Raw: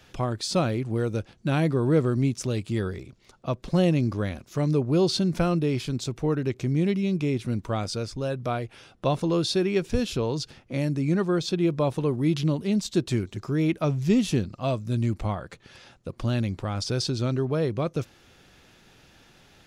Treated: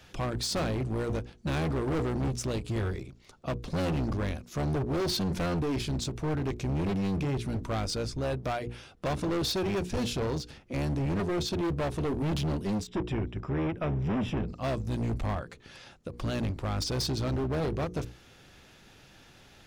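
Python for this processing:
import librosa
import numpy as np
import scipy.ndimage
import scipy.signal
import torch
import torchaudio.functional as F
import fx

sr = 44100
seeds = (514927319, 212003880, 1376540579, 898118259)

y = fx.octave_divider(x, sr, octaves=1, level_db=-5.0)
y = fx.hum_notches(y, sr, base_hz=60, count=8)
y = np.clip(y, -10.0 ** (-27.0 / 20.0), 10.0 ** (-27.0 / 20.0))
y = fx.savgol(y, sr, points=25, at=(12.87, 14.48))
y = fx.end_taper(y, sr, db_per_s=190.0)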